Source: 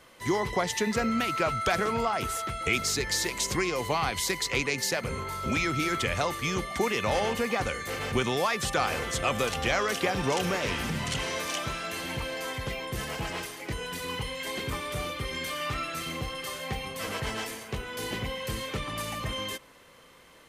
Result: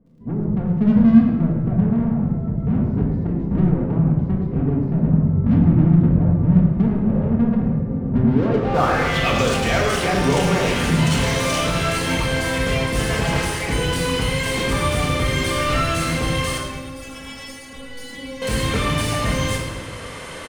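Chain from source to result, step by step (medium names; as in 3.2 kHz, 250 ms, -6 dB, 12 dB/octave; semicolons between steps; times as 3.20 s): bass shelf 420 Hz +10 dB; level rider gain up to 13 dB; low-pass sweep 200 Hz -> 9.5 kHz, 8.25–9.54 s; crackle 38 per s -57 dBFS; overdrive pedal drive 16 dB, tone 5.1 kHz, clips at -17.5 dBFS; 16.58–18.42 s: inharmonic resonator 270 Hz, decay 0.22 s, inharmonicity 0.002; feedback delay 107 ms, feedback 52%, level -13 dB; reverberation RT60 1.1 s, pre-delay 4 ms, DRR -1.5 dB; trim -5.5 dB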